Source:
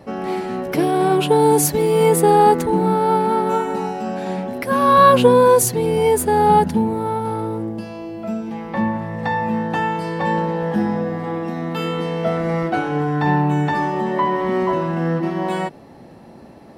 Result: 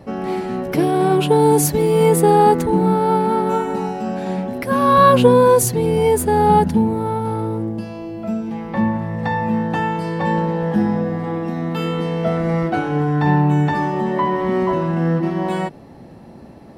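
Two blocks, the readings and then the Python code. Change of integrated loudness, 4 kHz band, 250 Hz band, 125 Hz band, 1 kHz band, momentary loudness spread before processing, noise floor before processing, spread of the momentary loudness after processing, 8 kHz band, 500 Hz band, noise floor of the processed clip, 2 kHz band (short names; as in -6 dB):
+0.5 dB, -1.0 dB, +2.0 dB, +3.5 dB, -0.5 dB, 13 LU, -42 dBFS, 12 LU, -1.0 dB, +0.5 dB, -40 dBFS, -1.0 dB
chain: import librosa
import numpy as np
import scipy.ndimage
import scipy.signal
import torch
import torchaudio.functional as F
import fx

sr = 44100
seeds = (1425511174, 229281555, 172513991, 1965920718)

y = fx.low_shelf(x, sr, hz=220.0, db=7.0)
y = y * librosa.db_to_amplitude(-1.0)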